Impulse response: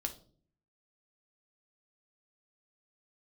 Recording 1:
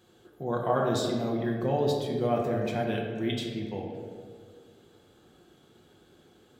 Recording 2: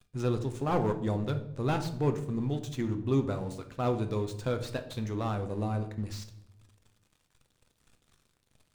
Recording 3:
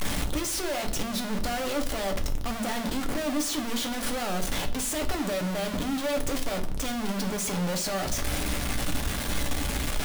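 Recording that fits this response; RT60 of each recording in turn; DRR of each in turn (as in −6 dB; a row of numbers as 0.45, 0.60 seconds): 3; 1.9, 0.85, 0.50 seconds; −2.0, 6.5, 4.5 decibels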